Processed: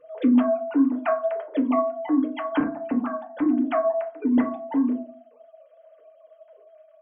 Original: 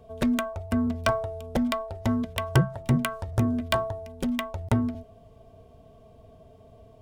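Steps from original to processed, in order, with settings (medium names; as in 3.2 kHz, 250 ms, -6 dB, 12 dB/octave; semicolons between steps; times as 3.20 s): formants replaced by sine waves; vibrato 2.3 Hz 6.6 cents; FDN reverb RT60 0.37 s, low-frequency decay 1.45×, high-frequency decay 0.35×, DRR 1 dB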